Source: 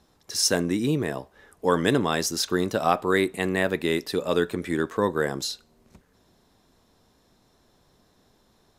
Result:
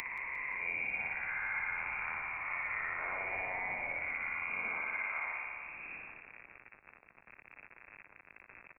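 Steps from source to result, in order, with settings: spectral swells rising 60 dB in 2.03 s; compressor 16:1, threshold -32 dBFS, peak gain reduction 20 dB; spring tank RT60 1.7 s, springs 58 ms, chirp 65 ms, DRR -2 dB; bit-crush 8-bit; inverted band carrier 2600 Hz; feedback echo 0.176 s, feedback 47%, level -16.5 dB; three-band squash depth 40%; gain -5.5 dB

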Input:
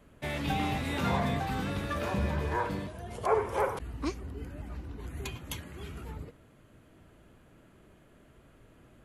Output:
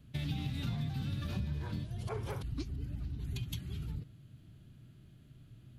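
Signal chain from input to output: graphic EQ 125/500/1000/2000/4000/8000 Hz +11/-12/-11/-7/+6/-6 dB; time stretch by phase-locked vocoder 0.64×; compressor 6:1, threshold -33 dBFS, peak gain reduction 10 dB

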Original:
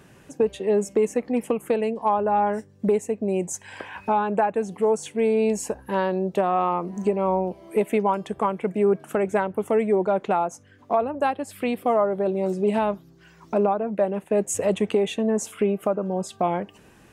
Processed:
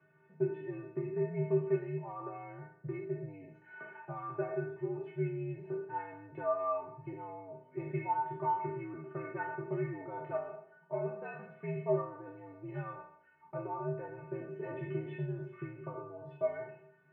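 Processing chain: spectral trails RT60 0.70 s; metallic resonator 230 Hz, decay 0.37 s, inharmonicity 0.008; mistuned SSB -79 Hz 230–2300 Hz

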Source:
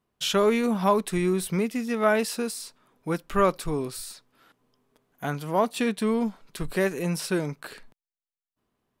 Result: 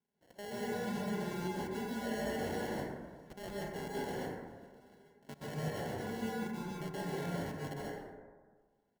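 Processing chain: compressor 2:1, threshold -42 dBFS, peak gain reduction 14 dB; auto swell 0.304 s; dynamic EQ 230 Hz, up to -3 dB, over -49 dBFS, Q 1.3; comb 4.8 ms, depth 99%; 5.28–7.43 echoes that change speed 98 ms, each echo -4 st, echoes 3, each echo -6 dB; sample-and-hold 36×; level quantiser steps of 22 dB; HPF 130 Hz 6 dB/oct; plate-style reverb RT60 1.5 s, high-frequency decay 0.35×, pre-delay 0.115 s, DRR -6.5 dB

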